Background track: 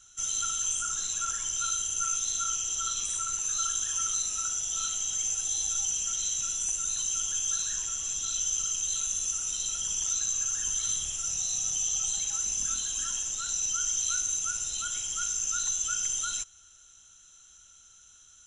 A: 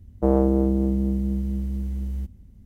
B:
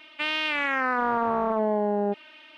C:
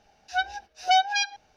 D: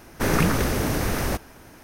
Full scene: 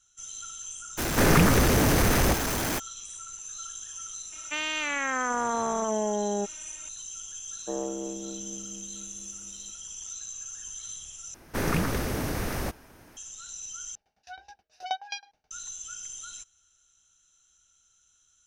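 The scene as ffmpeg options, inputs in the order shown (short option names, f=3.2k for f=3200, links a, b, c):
-filter_complex "[4:a]asplit=2[a][b];[0:a]volume=-10dB[c];[a]aeval=exprs='val(0)+0.5*0.075*sgn(val(0))':c=same[d];[1:a]highpass=340[e];[3:a]aeval=exprs='val(0)*pow(10,-21*if(lt(mod(9.4*n/s,1),2*abs(9.4)/1000),1-mod(9.4*n/s,1)/(2*abs(9.4)/1000),(mod(9.4*n/s,1)-2*abs(9.4)/1000)/(1-2*abs(9.4)/1000))/20)':c=same[f];[c]asplit=3[g][h][i];[g]atrim=end=11.344[j];[b]atrim=end=1.83,asetpts=PTS-STARTPTS,volume=-6dB[k];[h]atrim=start=13.166:end=13.954[l];[f]atrim=end=1.56,asetpts=PTS-STARTPTS,volume=-6dB[m];[i]atrim=start=15.506[n];[d]atrim=end=1.83,asetpts=PTS-STARTPTS,volume=-1dB,afade=t=in:d=0.02,afade=t=out:st=1.81:d=0.02,adelay=970[o];[2:a]atrim=end=2.57,asetpts=PTS-STARTPTS,volume=-3.5dB,afade=t=in:d=0.004:c=hsin,afade=t=out:st=2.566:d=0.004:c=hsin,adelay=4320[p];[e]atrim=end=2.65,asetpts=PTS-STARTPTS,volume=-10dB,afade=t=in:d=0.004:c=hsin,afade=t=out:st=2.646:d=0.004:c=hsin,adelay=7450[q];[j][k]acrossfade=d=0.004:c1=hsin:c2=hsin[r];[r][l]acrossfade=d=0.004:c1=hsin:c2=hsin[s];[s][m]acrossfade=d=0.004:c1=hsin:c2=hsin[t];[t][n]acrossfade=d=0.004:c1=hsin:c2=hsin[u];[u][o][p][q]amix=inputs=4:normalize=0"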